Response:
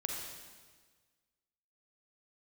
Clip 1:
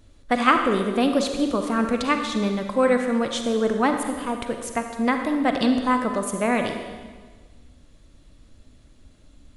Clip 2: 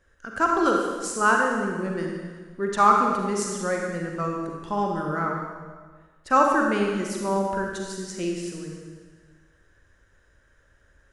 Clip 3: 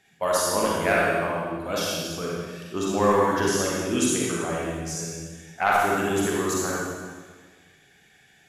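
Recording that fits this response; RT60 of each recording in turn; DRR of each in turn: 2; 1.5 s, 1.5 s, 1.5 s; 5.0 dB, 0.0 dB, -5.0 dB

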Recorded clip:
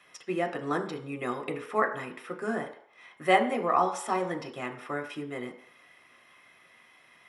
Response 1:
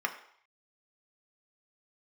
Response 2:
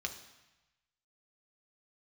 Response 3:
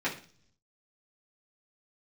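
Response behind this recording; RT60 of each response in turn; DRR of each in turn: 1; 0.65 s, 1.0 s, 0.45 s; 3.5 dB, 3.0 dB, -8.5 dB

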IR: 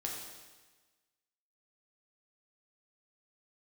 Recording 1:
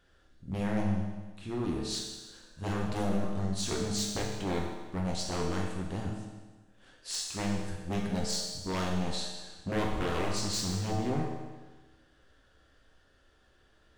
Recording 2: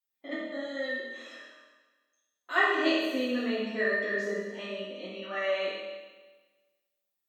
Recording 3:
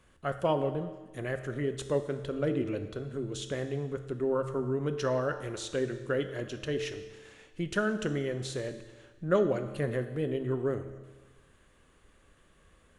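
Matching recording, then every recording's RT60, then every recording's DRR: 1; 1.3 s, 1.3 s, 1.3 s; -2.0 dB, -10.0 dB, 8.0 dB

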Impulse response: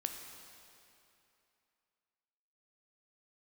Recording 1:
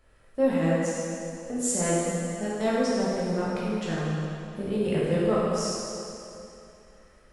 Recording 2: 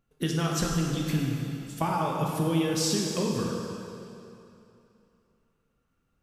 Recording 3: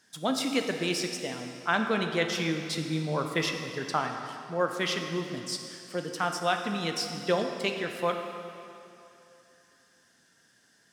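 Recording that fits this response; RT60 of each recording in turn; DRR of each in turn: 3; 2.8 s, 2.8 s, 2.8 s; -8.0 dB, -1.5 dB, 4.0 dB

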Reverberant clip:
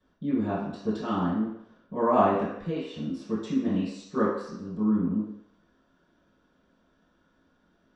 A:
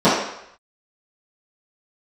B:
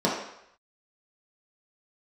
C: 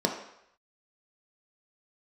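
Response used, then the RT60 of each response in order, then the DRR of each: A; 0.75 s, 0.75 s, 0.75 s; -15.5 dB, -6.0 dB, 1.5 dB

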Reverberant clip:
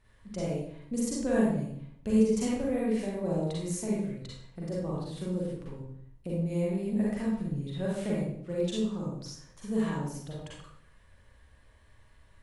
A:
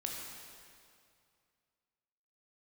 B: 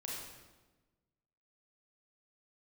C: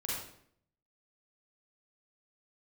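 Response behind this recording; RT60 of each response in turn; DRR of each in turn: C; 2.3 s, 1.2 s, 0.65 s; -1.0 dB, -4.5 dB, -6.0 dB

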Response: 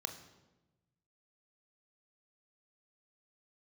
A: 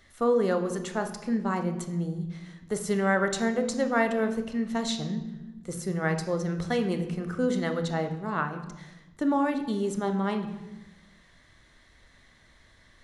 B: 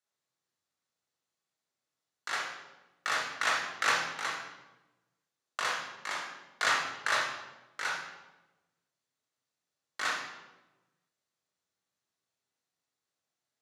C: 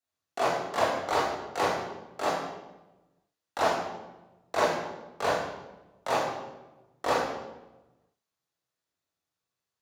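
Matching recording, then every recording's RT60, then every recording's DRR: A; 1.1 s, 1.1 s, 1.1 s; 6.5 dB, -2.0 dB, -8.0 dB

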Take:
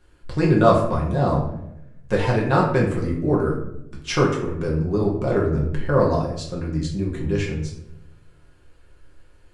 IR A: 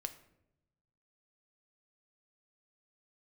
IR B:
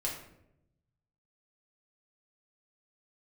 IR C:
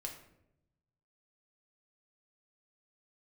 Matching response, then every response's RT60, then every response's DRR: B; 0.85 s, 0.80 s, 0.80 s; 8.0 dB, -4.0 dB, 1.0 dB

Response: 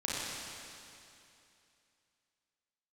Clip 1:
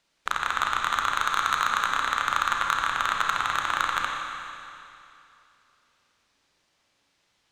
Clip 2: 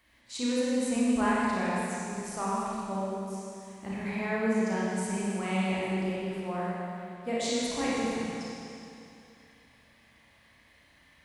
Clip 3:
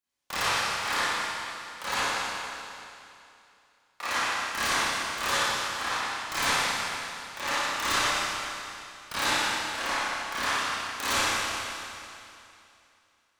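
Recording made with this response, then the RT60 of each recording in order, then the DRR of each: 2; 2.7 s, 2.7 s, 2.7 s; 0.0 dB, -7.5 dB, -14.5 dB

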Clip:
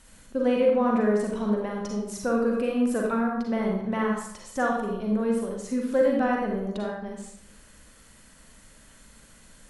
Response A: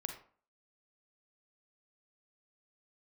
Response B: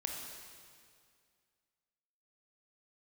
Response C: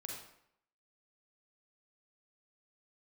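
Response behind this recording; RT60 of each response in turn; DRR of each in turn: C; 0.45 s, 2.1 s, 0.70 s; 4.5 dB, 0.5 dB, -1.0 dB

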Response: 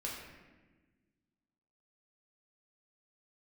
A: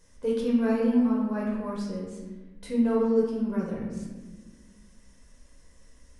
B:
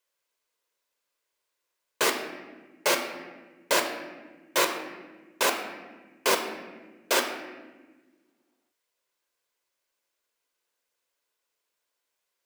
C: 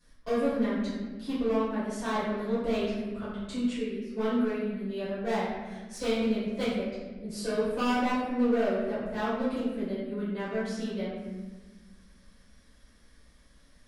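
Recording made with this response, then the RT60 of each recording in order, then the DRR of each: A; 1.3 s, 1.3 s, 1.3 s; -4.0 dB, 4.0 dB, -14.0 dB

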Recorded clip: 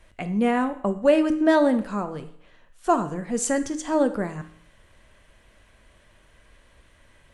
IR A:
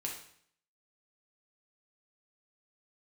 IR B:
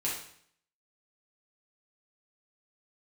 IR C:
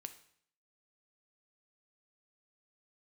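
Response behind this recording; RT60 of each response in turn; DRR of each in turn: C; 0.60 s, 0.60 s, 0.60 s; -1.5 dB, -6.0 dB, 8.5 dB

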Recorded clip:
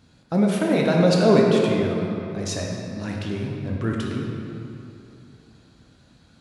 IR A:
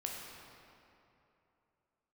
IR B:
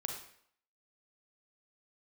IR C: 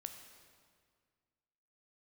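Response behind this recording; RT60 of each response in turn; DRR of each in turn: A; 2.9 s, 0.65 s, 1.9 s; -1.5 dB, 2.0 dB, 5.5 dB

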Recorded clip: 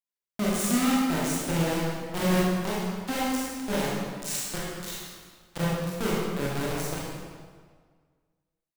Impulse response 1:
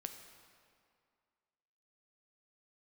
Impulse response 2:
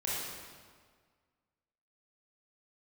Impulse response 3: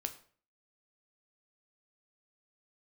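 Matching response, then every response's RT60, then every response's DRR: 2; 2.2 s, 1.7 s, 0.50 s; 6.0 dB, -7.5 dB, 6.5 dB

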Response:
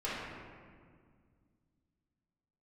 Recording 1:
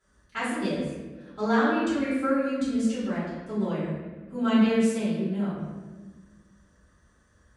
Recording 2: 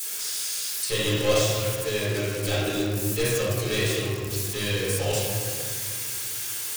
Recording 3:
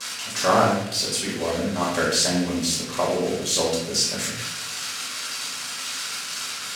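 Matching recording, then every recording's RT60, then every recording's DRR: 2; 1.3 s, 1.9 s, 0.80 s; -13.0 dB, -10.0 dB, -6.5 dB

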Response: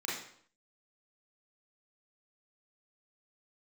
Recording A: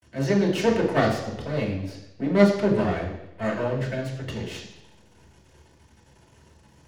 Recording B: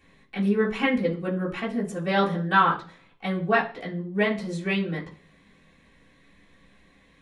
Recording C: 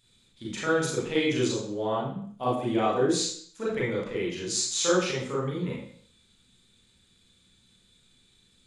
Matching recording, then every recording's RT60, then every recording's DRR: C; 0.90 s, 0.40 s, 0.60 s; -3.0 dB, -7.5 dB, -6.0 dB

